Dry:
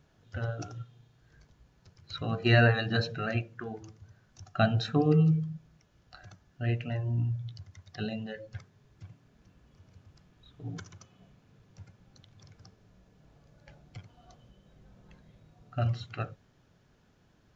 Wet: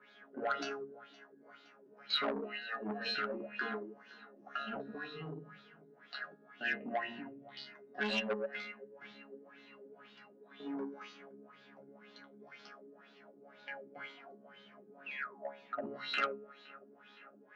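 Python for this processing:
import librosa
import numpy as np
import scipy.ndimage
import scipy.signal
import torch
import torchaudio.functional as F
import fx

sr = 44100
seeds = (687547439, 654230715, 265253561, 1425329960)

y = scipy.signal.sosfilt(scipy.signal.butter(8, 200.0, 'highpass', fs=sr, output='sos'), x)
y = fx.peak_eq(y, sr, hz=1800.0, db=7.0, octaves=1.2)
y = fx.over_compress(y, sr, threshold_db=-36.0, ratio=-1.0)
y = fx.spec_paint(y, sr, seeds[0], shape='fall', start_s=15.06, length_s=0.41, low_hz=510.0, high_hz=2800.0, level_db=-45.0)
y = fx.resonator_bank(y, sr, root=49, chord='fifth', decay_s=0.56)
y = fx.filter_lfo_lowpass(y, sr, shape='sine', hz=2.0, low_hz=340.0, high_hz=3900.0, q=4.1)
y = fx.echo_feedback(y, sr, ms=516, feedback_pct=58, wet_db=-23)
y = fx.transformer_sat(y, sr, knee_hz=1400.0)
y = y * 10.0 ** (14.0 / 20.0)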